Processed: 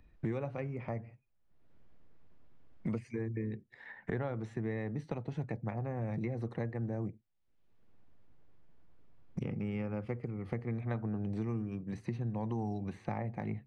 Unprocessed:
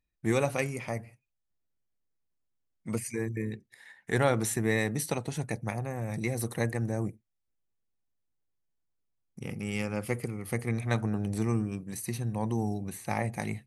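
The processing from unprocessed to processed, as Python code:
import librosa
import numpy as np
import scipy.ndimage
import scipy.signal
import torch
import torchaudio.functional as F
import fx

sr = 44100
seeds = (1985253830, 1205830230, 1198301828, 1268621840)

y = fx.dynamic_eq(x, sr, hz=1000.0, q=1.1, threshold_db=-50.0, ratio=4.0, max_db=6, at=(12.46, 13.05))
y = fx.rider(y, sr, range_db=10, speed_s=2.0)
y = fx.spacing_loss(y, sr, db_at_10k=41)
y = fx.band_squash(y, sr, depth_pct=100)
y = F.gain(torch.from_numpy(y), -5.5).numpy()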